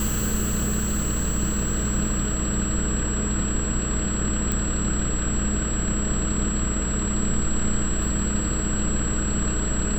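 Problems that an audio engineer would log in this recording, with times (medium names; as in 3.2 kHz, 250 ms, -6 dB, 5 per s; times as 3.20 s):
hum 60 Hz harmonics 8 -28 dBFS
whine 7.7 kHz -29 dBFS
4.52 s: pop -10 dBFS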